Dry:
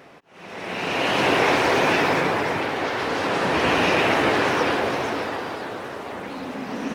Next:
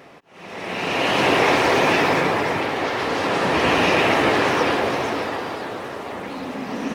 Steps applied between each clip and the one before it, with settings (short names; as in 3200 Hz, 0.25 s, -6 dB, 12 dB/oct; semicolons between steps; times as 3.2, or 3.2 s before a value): notch 1500 Hz, Q 19; gain +2 dB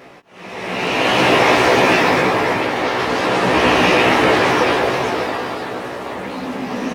doubler 16 ms -3 dB; gain +2.5 dB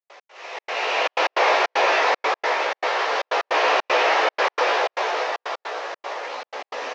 CVSD 32 kbps; inverse Chebyshev high-pass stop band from 190 Hz, stop band 50 dB; step gate ".x.xxx.xxxx" 154 bpm -60 dB; gain -1.5 dB